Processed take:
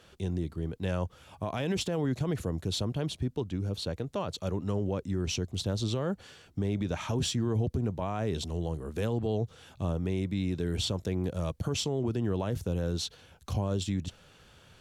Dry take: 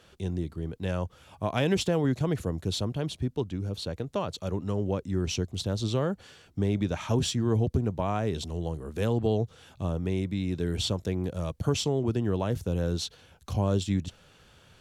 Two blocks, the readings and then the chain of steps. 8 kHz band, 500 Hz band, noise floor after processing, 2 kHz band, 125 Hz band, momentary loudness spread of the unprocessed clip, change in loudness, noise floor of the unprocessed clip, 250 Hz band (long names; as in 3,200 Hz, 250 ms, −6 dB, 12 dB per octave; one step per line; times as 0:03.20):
−1.0 dB, −3.5 dB, −59 dBFS, −3.0 dB, −2.5 dB, 8 LU, −2.5 dB, −59 dBFS, −2.5 dB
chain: brickwall limiter −21.5 dBFS, peak gain reduction 9 dB